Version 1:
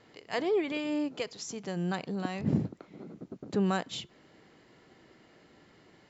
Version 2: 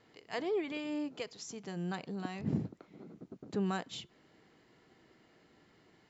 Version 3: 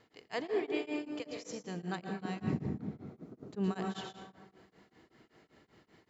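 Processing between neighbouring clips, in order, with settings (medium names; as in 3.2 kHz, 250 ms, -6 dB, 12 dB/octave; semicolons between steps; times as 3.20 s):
band-stop 560 Hz, Q 14; trim -5.5 dB
plate-style reverb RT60 1.5 s, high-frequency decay 0.35×, pre-delay 100 ms, DRR 2.5 dB; tremolo of two beating tones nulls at 5.2 Hz; trim +1.5 dB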